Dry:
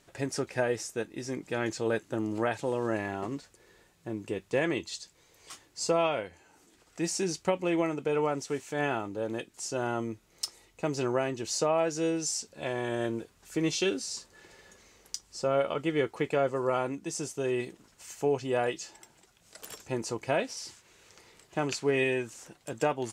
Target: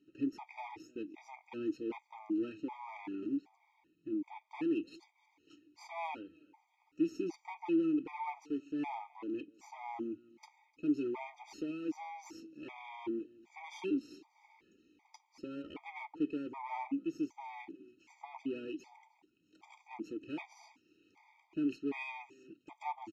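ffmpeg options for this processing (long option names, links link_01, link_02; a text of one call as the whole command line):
ffmpeg -i in.wav -filter_complex "[0:a]aresample=16000,asoftclip=type=tanh:threshold=-25dB,aresample=44100,aeval=exprs='0.0841*(cos(1*acos(clip(val(0)/0.0841,-1,1)))-cos(1*PI/2))+0.00531*(cos(4*acos(clip(val(0)/0.0841,-1,1)))-cos(4*PI/2))+0.015*(cos(6*acos(clip(val(0)/0.0841,-1,1)))-cos(6*PI/2))':channel_layout=same,asplit=3[link_01][link_02][link_03];[link_01]bandpass=frequency=300:width_type=q:width=8,volume=0dB[link_04];[link_02]bandpass=frequency=870:width_type=q:width=8,volume=-6dB[link_05];[link_03]bandpass=frequency=2240:width_type=q:width=8,volume=-9dB[link_06];[link_04][link_05][link_06]amix=inputs=3:normalize=0,aecho=1:1:302:0.0668,afftfilt=real='re*gt(sin(2*PI*1.3*pts/sr)*(1-2*mod(floor(b*sr/1024/630),2)),0)':imag='im*gt(sin(2*PI*1.3*pts/sr)*(1-2*mod(floor(b*sr/1024/630),2)),0)':win_size=1024:overlap=0.75,volume=8dB" out.wav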